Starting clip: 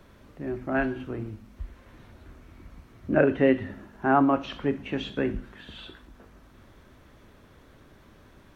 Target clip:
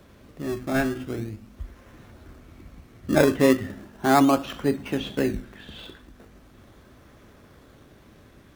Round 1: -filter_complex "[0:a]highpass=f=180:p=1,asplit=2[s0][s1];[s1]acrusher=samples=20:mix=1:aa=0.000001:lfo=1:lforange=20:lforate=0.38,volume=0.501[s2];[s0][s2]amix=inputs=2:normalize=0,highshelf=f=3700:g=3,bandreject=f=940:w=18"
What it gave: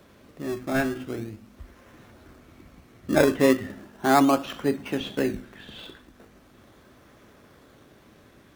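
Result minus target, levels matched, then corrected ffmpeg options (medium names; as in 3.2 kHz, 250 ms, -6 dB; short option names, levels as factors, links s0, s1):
125 Hz band -3.0 dB
-filter_complex "[0:a]highpass=f=49:p=1,asplit=2[s0][s1];[s1]acrusher=samples=20:mix=1:aa=0.000001:lfo=1:lforange=20:lforate=0.38,volume=0.501[s2];[s0][s2]amix=inputs=2:normalize=0,highshelf=f=3700:g=3,bandreject=f=940:w=18"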